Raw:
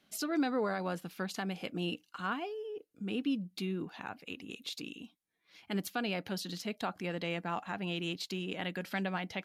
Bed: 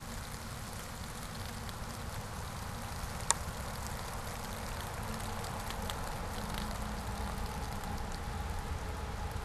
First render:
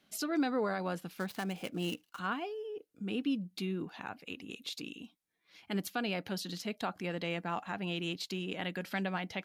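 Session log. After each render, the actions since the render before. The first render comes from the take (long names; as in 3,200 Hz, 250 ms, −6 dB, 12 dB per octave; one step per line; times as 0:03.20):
0:01.17–0:02.19: gap after every zero crossing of 0.074 ms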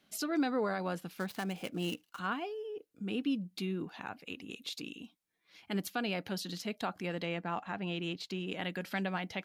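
0:07.25–0:08.47: low-pass filter 3,800 Hz 6 dB per octave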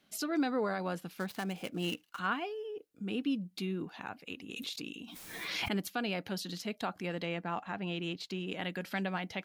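0:01.83–0:02.71: parametric band 1,900 Hz +4 dB 1.8 octaves
0:04.56–0:05.80: background raised ahead of every attack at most 27 dB per second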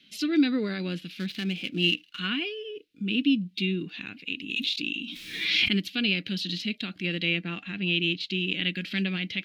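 harmonic and percussive parts rebalanced harmonic +7 dB
drawn EQ curve 140 Hz 0 dB, 310 Hz +3 dB, 840 Hz −20 dB, 2,600 Hz +12 dB, 3,800 Hz +11 dB, 7,300 Hz −5 dB, 15,000 Hz −9 dB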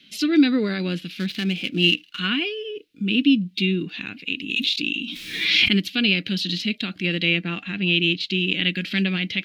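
level +6 dB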